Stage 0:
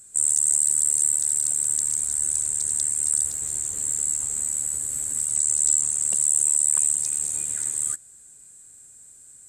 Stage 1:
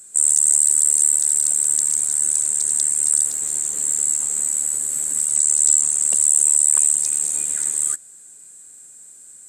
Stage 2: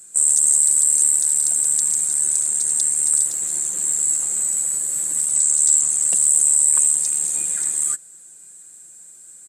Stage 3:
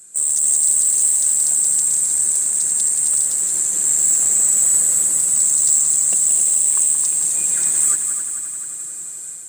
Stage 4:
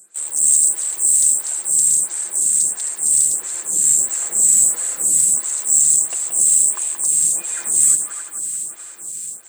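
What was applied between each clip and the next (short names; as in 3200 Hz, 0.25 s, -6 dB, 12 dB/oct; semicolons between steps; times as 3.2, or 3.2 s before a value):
HPF 200 Hz 12 dB/oct; gain +5 dB
comb 5.8 ms, depth 52%; gain -1 dB
AGC gain up to 11 dB; soft clip -8.5 dBFS, distortion -15 dB; multi-head echo 88 ms, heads second and third, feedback 68%, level -8.5 dB
in parallel at -11 dB: bit-crush 5-bit; on the sum: photocell phaser 1.5 Hz; gain +1 dB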